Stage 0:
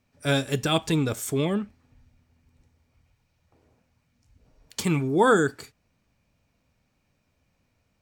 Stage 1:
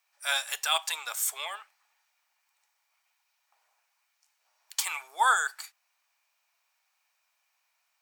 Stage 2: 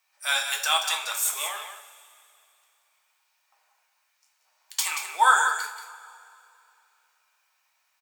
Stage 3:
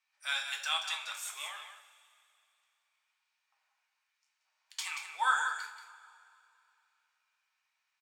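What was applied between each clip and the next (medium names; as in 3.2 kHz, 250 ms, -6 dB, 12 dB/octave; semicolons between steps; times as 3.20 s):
steep high-pass 780 Hz 36 dB/octave; treble shelf 8.5 kHz +9 dB
delay 181 ms -9 dB; two-slope reverb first 0.39 s, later 2.7 s, from -18 dB, DRR 2 dB; trim +2 dB
band-pass filter 2.4 kHz, Q 0.65; trim -7.5 dB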